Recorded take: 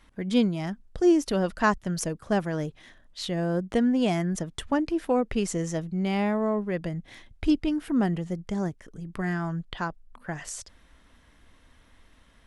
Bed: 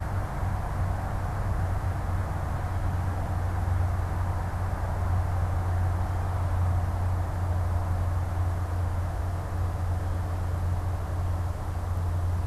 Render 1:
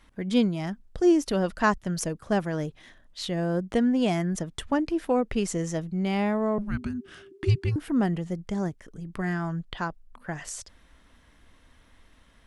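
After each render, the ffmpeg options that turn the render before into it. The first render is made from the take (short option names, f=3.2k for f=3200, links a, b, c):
-filter_complex "[0:a]asettb=1/sr,asplit=3[a][b][c];[a]atrim=end=6.584[d];[b]atrim=start=6.58:end=7.76,asetpts=PTS-STARTPTS,afade=t=in:d=0.004:c=qsin,afade=t=out:st=1.176:d=0.004:c=qsin,afreqshift=-410[e];[c]atrim=start=7.756[f];[d][e]acrossfade=d=0.004:c1=hsin:c2=qsin[g];[g][f]acrossfade=d=0.004:c1=qsin:c2=hsin"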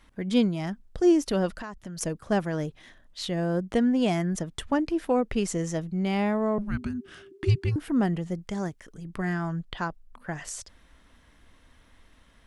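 -filter_complex "[0:a]asettb=1/sr,asplit=3[a][b][c];[a]atrim=end=1.504[d];[b]atrim=start=1.5:end=2.01,asetpts=PTS-STARTPTS,afade=t=in:d=0.004:c=qsin,afade=t=out:st=0.506:d=0.004:c=qsin,acompressor=threshold=-34dB:ratio=10:attack=3.2:release=140:knee=1:detection=peak[e];[c]atrim=start=2.006[f];[d][e]acrossfade=d=0.004:c1=hsin:c2=qsin[g];[g][f]acrossfade=d=0.004:c1=qsin:c2=hsin,asettb=1/sr,asplit=3[h][i][j];[h]atrim=end=8.394[k];[i]atrim=start=8.39:end=9.05,asetpts=PTS-STARTPTS,afade=t=in:d=0.004:c=qsin,afade=t=out:st=0.656:d=0.004:c=qsin,tiltshelf=f=780:g=-3[l];[j]atrim=start=9.046[m];[k][l]acrossfade=d=0.004:c1=hsin:c2=qsin[n];[n][m]acrossfade=d=0.004:c1=qsin:c2=hsin"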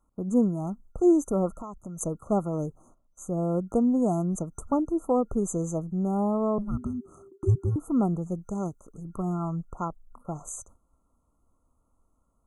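-af "agate=range=-12dB:threshold=-50dB:ratio=16:detection=peak,afftfilt=real='re*(1-between(b*sr/4096,1400,6100))':imag='im*(1-between(b*sr/4096,1400,6100))':win_size=4096:overlap=0.75"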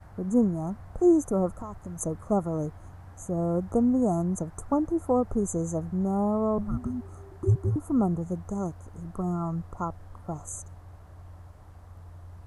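-filter_complex "[1:a]volume=-18dB[a];[0:a][a]amix=inputs=2:normalize=0"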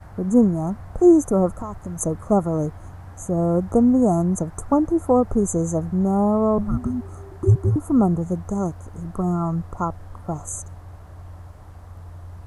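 -af "volume=7dB"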